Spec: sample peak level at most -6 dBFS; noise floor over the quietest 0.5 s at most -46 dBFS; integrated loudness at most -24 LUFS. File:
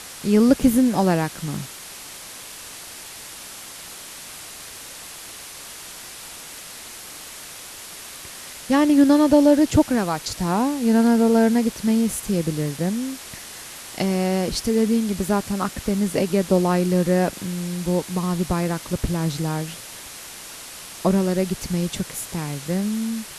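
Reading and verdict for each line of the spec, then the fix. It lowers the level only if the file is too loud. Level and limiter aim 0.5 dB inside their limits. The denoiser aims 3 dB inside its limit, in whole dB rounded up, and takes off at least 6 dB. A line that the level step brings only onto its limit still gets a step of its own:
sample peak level -2.5 dBFS: fail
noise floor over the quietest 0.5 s -38 dBFS: fail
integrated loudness -21.0 LUFS: fail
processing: noise reduction 8 dB, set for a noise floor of -38 dBFS; trim -3.5 dB; peak limiter -6.5 dBFS

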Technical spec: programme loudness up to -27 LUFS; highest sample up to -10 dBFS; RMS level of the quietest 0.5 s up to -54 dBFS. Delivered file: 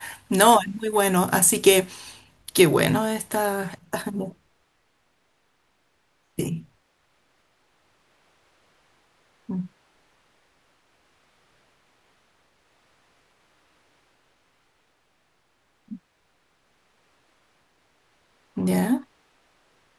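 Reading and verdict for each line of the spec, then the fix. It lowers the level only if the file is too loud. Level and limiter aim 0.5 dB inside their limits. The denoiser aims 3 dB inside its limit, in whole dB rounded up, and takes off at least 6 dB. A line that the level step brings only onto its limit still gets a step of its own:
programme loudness -22.0 LUFS: fail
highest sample -2.5 dBFS: fail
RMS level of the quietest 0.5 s -68 dBFS: pass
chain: trim -5.5 dB; peak limiter -10.5 dBFS

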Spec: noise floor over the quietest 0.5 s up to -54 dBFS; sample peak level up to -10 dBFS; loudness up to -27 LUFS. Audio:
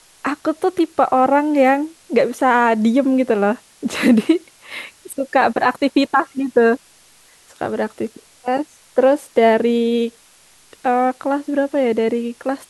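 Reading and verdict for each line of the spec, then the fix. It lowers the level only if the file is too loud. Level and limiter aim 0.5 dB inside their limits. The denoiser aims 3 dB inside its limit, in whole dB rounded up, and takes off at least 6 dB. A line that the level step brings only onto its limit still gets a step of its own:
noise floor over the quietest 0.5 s -50 dBFS: fail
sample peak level -3.5 dBFS: fail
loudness -17.5 LUFS: fail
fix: trim -10 dB

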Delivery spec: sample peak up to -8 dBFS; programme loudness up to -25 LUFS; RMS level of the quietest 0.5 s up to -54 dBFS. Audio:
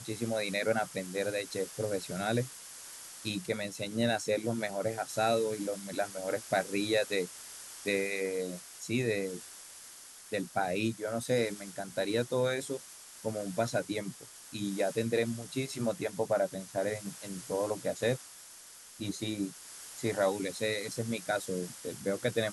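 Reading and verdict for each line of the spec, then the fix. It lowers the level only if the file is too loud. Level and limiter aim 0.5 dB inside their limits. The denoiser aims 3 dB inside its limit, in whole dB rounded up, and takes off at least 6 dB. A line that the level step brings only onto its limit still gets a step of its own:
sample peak -16.0 dBFS: pass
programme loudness -33.5 LUFS: pass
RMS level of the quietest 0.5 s -52 dBFS: fail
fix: noise reduction 6 dB, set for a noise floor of -52 dBFS

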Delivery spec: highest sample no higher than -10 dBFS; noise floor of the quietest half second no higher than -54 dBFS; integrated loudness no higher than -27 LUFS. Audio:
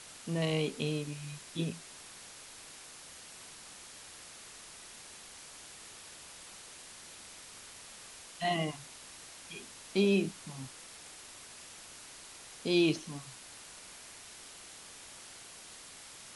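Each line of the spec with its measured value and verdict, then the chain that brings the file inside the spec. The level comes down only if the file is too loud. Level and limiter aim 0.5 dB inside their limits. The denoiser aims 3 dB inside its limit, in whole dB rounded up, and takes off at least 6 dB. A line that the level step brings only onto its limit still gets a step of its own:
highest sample -17.0 dBFS: pass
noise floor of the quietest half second -51 dBFS: fail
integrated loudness -39.0 LUFS: pass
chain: noise reduction 6 dB, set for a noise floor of -51 dBFS

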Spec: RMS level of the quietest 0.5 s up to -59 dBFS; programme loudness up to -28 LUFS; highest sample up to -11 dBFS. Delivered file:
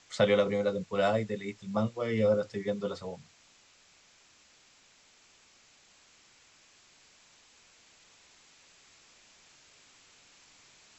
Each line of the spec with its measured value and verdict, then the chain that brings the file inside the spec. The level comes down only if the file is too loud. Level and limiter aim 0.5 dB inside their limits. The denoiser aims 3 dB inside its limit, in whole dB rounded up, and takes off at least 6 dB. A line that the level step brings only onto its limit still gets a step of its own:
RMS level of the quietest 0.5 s -62 dBFS: pass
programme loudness -30.0 LUFS: pass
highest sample -12.0 dBFS: pass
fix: none needed

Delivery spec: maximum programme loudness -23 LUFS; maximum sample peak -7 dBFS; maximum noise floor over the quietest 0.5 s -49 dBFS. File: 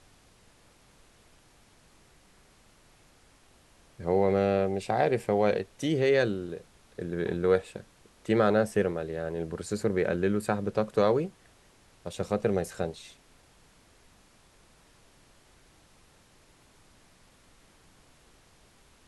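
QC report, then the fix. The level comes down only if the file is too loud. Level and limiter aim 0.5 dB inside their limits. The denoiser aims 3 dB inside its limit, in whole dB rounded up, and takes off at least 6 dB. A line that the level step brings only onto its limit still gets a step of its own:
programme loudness -28.0 LUFS: pass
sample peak -11.0 dBFS: pass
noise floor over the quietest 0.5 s -60 dBFS: pass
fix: none needed

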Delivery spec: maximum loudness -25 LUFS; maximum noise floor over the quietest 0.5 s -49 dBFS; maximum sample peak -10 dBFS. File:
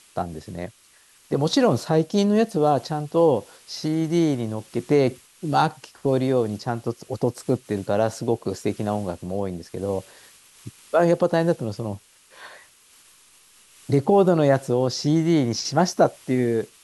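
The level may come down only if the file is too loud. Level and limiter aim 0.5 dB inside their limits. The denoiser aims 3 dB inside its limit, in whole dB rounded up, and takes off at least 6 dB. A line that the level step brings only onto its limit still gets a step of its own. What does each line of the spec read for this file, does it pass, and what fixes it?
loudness -23.0 LUFS: fail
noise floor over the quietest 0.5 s -56 dBFS: pass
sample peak -5.0 dBFS: fail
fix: trim -2.5 dB; peak limiter -10.5 dBFS

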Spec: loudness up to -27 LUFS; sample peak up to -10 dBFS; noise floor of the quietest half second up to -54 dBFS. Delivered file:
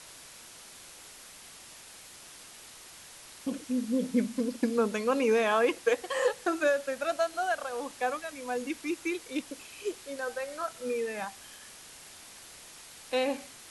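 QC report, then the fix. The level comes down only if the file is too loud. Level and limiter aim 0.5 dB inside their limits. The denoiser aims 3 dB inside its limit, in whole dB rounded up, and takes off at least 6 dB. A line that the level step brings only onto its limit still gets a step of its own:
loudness -31.0 LUFS: pass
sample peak -13.0 dBFS: pass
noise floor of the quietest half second -50 dBFS: fail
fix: noise reduction 7 dB, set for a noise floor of -50 dBFS

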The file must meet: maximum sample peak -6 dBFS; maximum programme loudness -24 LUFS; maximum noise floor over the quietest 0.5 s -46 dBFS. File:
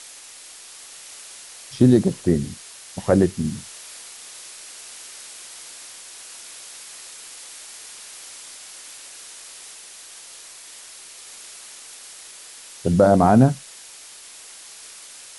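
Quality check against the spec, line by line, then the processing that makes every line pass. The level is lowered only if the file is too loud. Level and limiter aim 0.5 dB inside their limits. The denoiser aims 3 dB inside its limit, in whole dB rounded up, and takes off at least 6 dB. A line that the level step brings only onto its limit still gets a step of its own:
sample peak -3.5 dBFS: fail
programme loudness -19.0 LUFS: fail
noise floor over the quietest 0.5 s -43 dBFS: fail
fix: trim -5.5 dB

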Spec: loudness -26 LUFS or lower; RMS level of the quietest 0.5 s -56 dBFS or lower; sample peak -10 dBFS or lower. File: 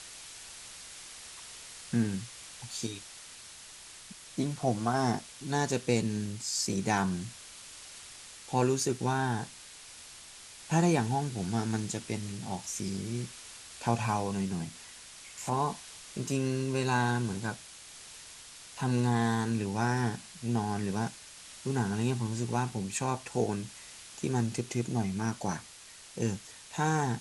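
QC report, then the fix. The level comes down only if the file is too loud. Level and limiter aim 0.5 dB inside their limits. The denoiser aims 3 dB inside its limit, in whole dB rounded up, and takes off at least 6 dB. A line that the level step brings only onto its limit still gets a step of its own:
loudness -32.0 LUFS: pass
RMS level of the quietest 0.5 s -51 dBFS: fail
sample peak -12.5 dBFS: pass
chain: noise reduction 8 dB, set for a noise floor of -51 dBFS

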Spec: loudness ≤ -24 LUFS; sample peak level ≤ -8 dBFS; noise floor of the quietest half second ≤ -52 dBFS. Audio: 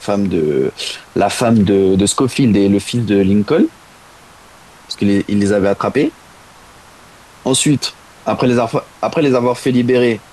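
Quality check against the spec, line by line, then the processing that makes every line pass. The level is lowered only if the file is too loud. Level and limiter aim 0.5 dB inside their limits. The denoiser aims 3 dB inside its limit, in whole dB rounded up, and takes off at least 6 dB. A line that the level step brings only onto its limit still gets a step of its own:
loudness -15.0 LUFS: fail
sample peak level -3.5 dBFS: fail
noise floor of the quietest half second -42 dBFS: fail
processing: noise reduction 6 dB, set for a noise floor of -42 dBFS; trim -9.5 dB

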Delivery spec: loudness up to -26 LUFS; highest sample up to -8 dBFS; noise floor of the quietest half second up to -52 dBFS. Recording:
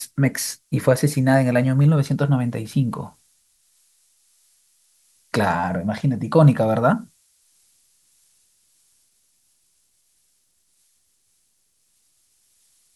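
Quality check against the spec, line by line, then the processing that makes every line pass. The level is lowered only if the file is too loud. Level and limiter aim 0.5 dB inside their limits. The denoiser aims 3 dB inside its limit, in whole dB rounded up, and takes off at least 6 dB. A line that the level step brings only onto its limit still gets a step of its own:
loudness -20.0 LUFS: fail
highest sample -4.0 dBFS: fail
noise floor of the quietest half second -66 dBFS: pass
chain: trim -6.5 dB

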